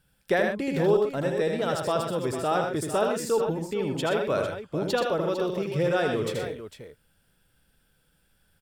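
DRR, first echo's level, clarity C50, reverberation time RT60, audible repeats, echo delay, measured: none, -4.5 dB, none, none, 3, 80 ms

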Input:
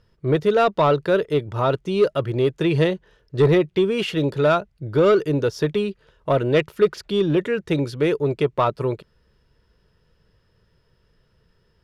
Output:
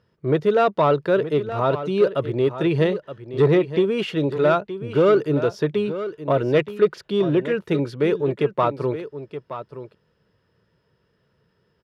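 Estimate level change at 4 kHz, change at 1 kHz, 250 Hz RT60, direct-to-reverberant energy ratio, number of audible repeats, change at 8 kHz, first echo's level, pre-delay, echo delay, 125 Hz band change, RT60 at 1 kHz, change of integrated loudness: -3.5 dB, -0.5 dB, none, none, 1, n/a, -12.0 dB, none, 0.922 s, -1.5 dB, none, -0.5 dB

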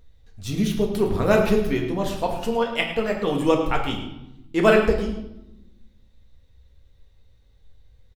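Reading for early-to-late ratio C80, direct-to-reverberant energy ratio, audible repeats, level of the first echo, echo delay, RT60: 8.0 dB, 0.5 dB, 1, -12.0 dB, 0.107 s, 0.90 s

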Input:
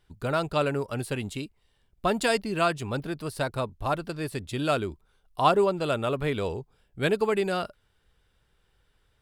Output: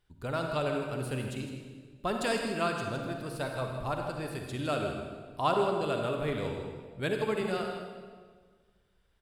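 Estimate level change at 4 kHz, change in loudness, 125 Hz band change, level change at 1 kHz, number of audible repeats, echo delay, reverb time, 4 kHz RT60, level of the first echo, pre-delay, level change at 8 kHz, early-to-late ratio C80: -5.0 dB, -5.0 dB, -4.0 dB, -5.0 dB, 1, 0.159 s, 1.6 s, 1.3 s, -10.5 dB, 39 ms, -5.0 dB, 4.0 dB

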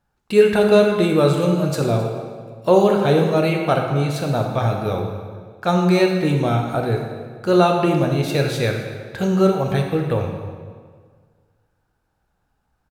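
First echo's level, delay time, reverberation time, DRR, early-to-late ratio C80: -18.0 dB, 0.263 s, 1.7 s, 2.0 dB, 5.5 dB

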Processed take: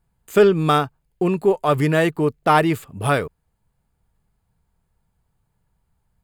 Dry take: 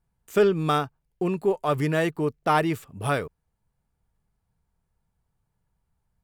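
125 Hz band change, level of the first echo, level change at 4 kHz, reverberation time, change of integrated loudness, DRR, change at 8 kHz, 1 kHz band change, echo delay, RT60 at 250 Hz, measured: +6.0 dB, none, +6.0 dB, none, +6.0 dB, none, +5.5 dB, +6.0 dB, none, none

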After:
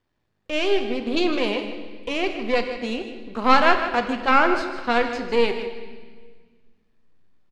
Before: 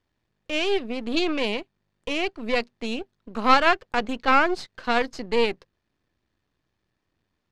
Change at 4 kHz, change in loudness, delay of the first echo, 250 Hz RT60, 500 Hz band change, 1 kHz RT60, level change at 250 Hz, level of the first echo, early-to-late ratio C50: +0.5 dB, +2.0 dB, 0.155 s, 2.3 s, +3.0 dB, 1.4 s, +3.0 dB, -12.0 dB, 7.0 dB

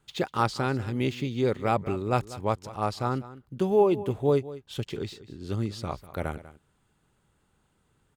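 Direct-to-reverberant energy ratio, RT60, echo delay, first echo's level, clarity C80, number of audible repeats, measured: none, none, 0.195 s, -16.5 dB, none, 1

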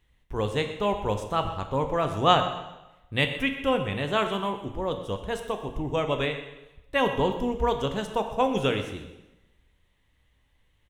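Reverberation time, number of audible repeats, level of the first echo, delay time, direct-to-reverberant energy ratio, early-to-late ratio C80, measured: 1.0 s, 3, -15.0 dB, 0.125 s, 6.0 dB, 9.5 dB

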